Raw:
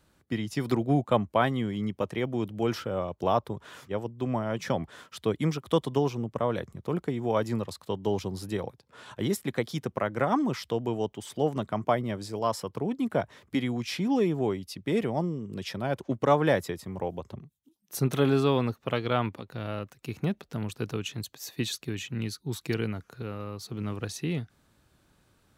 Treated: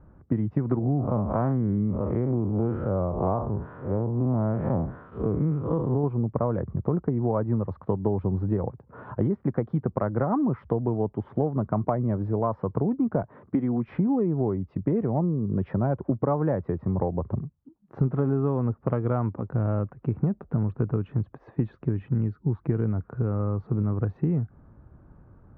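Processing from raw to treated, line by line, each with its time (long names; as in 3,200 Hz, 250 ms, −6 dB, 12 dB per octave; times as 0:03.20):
0:00.79–0:06.04: spectrum smeared in time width 134 ms
0:13.23–0:13.88: high-pass filter 160 Hz
whole clip: low-pass filter 1,300 Hz 24 dB per octave; low-shelf EQ 200 Hz +11 dB; downward compressor, threshold −29 dBFS; level +7.5 dB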